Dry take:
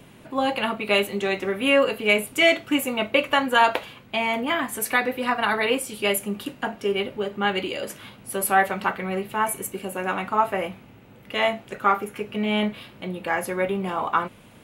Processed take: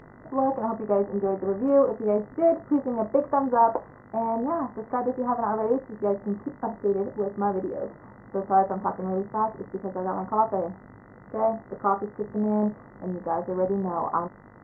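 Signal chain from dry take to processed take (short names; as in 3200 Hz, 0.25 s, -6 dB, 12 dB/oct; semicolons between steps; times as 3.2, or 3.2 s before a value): steep low-pass 1100 Hz 36 dB/oct; buzz 50 Hz, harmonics 40, -53 dBFS -1 dB/oct; Opus 32 kbps 48000 Hz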